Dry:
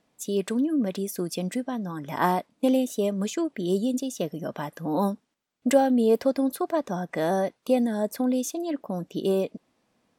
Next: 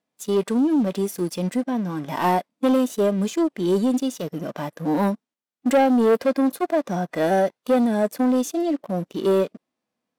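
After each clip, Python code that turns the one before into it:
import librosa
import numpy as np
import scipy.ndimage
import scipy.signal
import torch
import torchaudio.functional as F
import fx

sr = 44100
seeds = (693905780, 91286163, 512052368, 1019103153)

y = fx.leveller(x, sr, passes=3)
y = fx.low_shelf(y, sr, hz=110.0, db=-11.0)
y = fx.hpss(y, sr, part='percussive', gain_db=-9)
y = y * librosa.db_to_amplitude(-2.5)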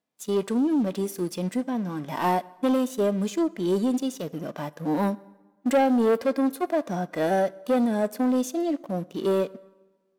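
y = fx.rev_plate(x, sr, seeds[0], rt60_s=1.2, hf_ratio=0.75, predelay_ms=0, drr_db=19.0)
y = y * librosa.db_to_amplitude(-3.5)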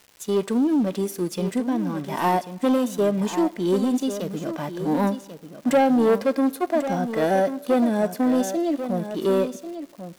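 y = fx.dmg_crackle(x, sr, seeds[1], per_s=330.0, level_db=-42.0)
y = y + 10.0 ** (-10.5 / 20.0) * np.pad(y, (int(1092 * sr / 1000.0), 0))[:len(y)]
y = y * librosa.db_to_amplitude(2.5)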